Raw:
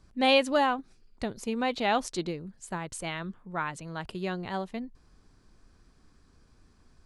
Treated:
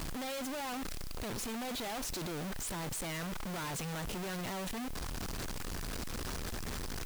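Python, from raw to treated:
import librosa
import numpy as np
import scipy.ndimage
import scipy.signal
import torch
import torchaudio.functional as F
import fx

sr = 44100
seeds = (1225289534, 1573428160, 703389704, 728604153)

y = np.sign(x) * np.sqrt(np.mean(np.square(x)))
y = fx.vibrato(y, sr, rate_hz=0.98, depth_cents=9.3)
y = fx.quant_dither(y, sr, seeds[0], bits=8, dither='triangular')
y = y * 10.0 ** (-6.5 / 20.0)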